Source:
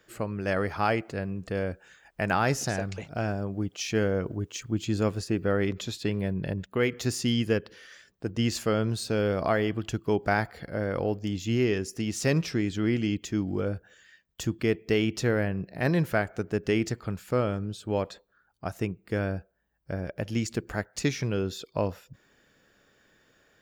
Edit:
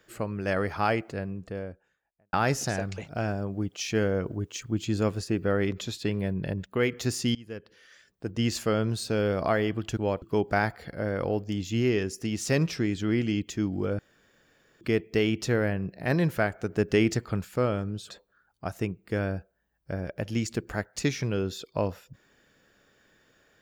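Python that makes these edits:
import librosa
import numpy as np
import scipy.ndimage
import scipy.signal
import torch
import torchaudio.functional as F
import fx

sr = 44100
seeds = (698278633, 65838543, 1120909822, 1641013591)

y = fx.studio_fade_out(x, sr, start_s=0.91, length_s=1.42)
y = fx.edit(y, sr, fx.fade_in_from(start_s=7.35, length_s=1.12, floor_db=-24.0),
    fx.room_tone_fill(start_s=13.74, length_s=0.82),
    fx.clip_gain(start_s=16.45, length_s=0.75, db=3.0),
    fx.move(start_s=17.85, length_s=0.25, to_s=9.97), tone=tone)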